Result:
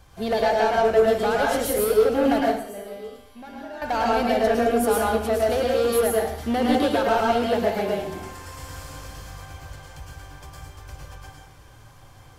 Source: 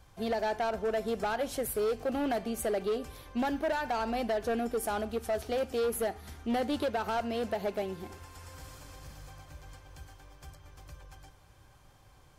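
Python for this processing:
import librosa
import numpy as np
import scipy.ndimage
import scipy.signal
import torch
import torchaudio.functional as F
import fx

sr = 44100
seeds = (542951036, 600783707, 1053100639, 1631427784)

y = fx.comb_fb(x, sr, f0_hz=200.0, decay_s=0.91, harmonics='all', damping=0.0, mix_pct=90, at=(2.4, 3.82))
y = fx.rev_plate(y, sr, seeds[0], rt60_s=0.64, hf_ratio=0.8, predelay_ms=95, drr_db=-3.0)
y = F.gain(torch.from_numpy(y), 6.0).numpy()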